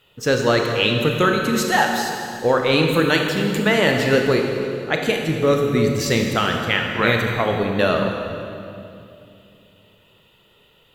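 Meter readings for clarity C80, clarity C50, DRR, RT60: 4.0 dB, 3.0 dB, 2.0 dB, 2.6 s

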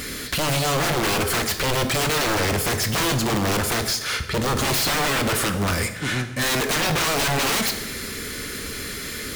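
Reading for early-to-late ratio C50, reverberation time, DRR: 10.0 dB, 1.1 s, 8.0 dB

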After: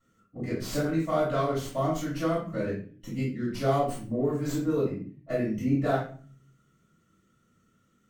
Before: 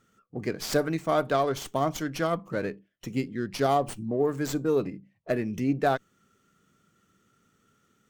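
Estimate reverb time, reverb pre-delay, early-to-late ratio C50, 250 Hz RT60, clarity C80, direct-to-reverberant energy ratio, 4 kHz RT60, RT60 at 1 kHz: 0.45 s, 3 ms, 4.0 dB, 0.70 s, 10.0 dB, -10.0 dB, 0.30 s, 0.40 s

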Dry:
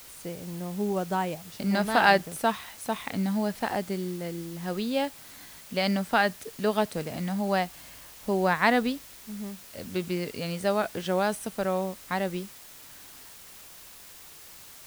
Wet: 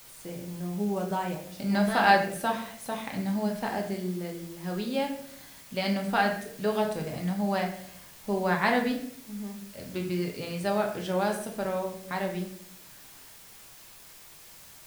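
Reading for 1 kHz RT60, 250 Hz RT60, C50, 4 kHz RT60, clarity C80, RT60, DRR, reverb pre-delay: 0.55 s, 0.85 s, 7.5 dB, 0.45 s, 10.5 dB, 0.65 s, 1.0 dB, 5 ms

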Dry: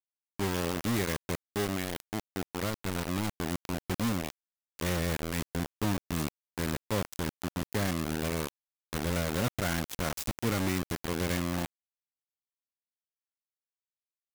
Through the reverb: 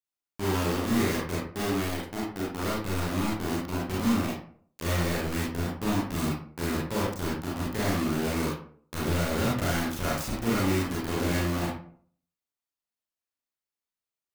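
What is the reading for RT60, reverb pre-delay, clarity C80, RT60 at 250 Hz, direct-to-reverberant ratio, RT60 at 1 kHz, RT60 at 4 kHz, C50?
0.50 s, 30 ms, 6.5 dB, 0.55 s, -6.0 dB, 0.45 s, 0.30 s, 1.5 dB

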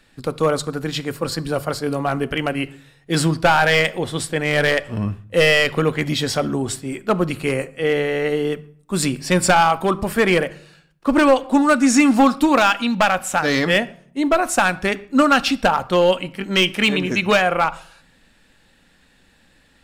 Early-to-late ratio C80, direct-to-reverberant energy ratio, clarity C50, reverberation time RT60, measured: 23.0 dB, 12.0 dB, 19.5 dB, 0.60 s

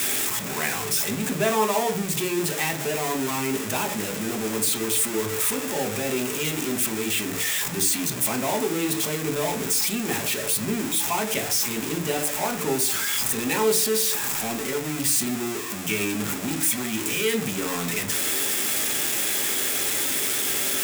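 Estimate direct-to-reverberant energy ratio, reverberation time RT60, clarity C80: 5.0 dB, 0.40 s, 20.0 dB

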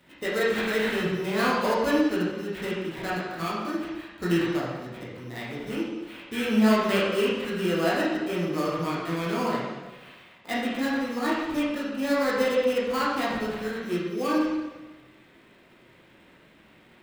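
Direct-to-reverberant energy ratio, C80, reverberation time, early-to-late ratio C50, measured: -8.0 dB, 2.5 dB, 1.2 s, -0.5 dB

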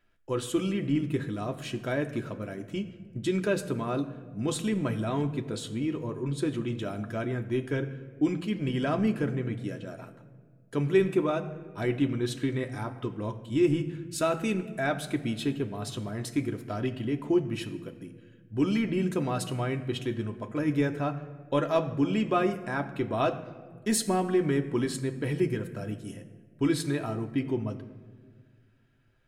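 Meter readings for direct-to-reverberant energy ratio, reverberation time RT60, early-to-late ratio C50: 4.0 dB, not exponential, 13.0 dB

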